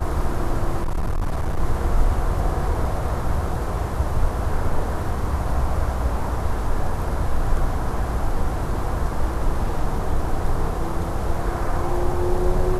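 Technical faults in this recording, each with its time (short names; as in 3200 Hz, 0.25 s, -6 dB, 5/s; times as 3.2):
0.82–1.6 clipped -18.5 dBFS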